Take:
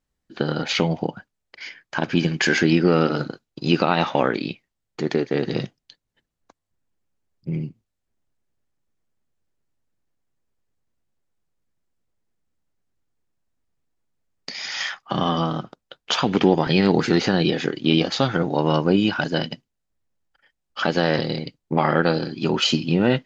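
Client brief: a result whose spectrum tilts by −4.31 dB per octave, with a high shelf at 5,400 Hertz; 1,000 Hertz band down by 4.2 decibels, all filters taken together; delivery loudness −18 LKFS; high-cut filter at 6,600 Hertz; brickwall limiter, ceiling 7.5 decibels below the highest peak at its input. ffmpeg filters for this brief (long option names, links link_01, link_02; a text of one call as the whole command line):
ffmpeg -i in.wav -af "lowpass=6600,equalizer=frequency=1000:width_type=o:gain=-6,highshelf=frequency=5400:gain=4.5,volume=7dB,alimiter=limit=-4dB:level=0:latency=1" out.wav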